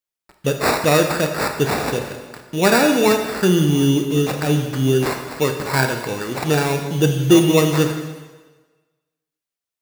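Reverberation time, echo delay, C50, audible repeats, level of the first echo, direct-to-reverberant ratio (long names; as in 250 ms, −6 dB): 1.3 s, no echo audible, 6.5 dB, no echo audible, no echo audible, 4.5 dB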